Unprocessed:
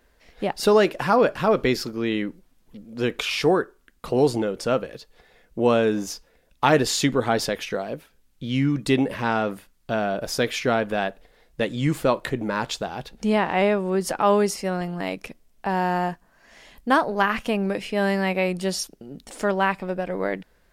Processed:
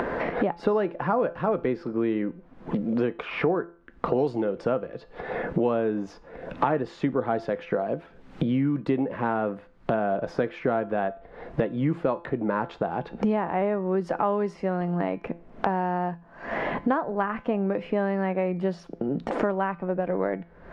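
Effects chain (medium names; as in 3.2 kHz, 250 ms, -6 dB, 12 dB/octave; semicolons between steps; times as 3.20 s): low-pass 1.3 kHz 12 dB/octave; bass shelf 65 Hz -11 dB; upward compressor, threshold -27 dBFS; feedback comb 170 Hz, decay 0.36 s, harmonics all, mix 50%; three bands compressed up and down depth 100%; trim +2.5 dB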